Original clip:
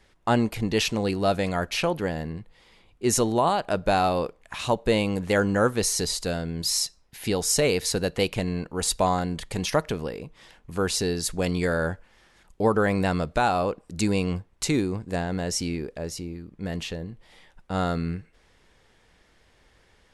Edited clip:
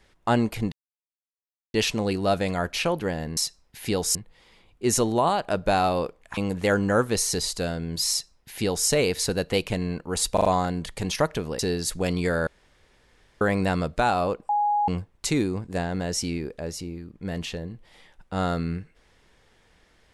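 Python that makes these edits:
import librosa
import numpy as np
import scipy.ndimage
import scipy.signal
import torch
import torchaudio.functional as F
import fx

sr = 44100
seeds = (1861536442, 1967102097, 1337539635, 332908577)

y = fx.edit(x, sr, fx.insert_silence(at_s=0.72, length_s=1.02),
    fx.cut(start_s=4.57, length_s=0.46),
    fx.duplicate(start_s=6.76, length_s=0.78, to_s=2.35),
    fx.stutter(start_s=8.99, slice_s=0.04, count=4),
    fx.cut(start_s=10.13, length_s=0.84),
    fx.room_tone_fill(start_s=11.85, length_s=0.94),
    fx.bleep(start_s=13.87, length_s=0.39, hz=829.0, db=-19.5), tone=tone)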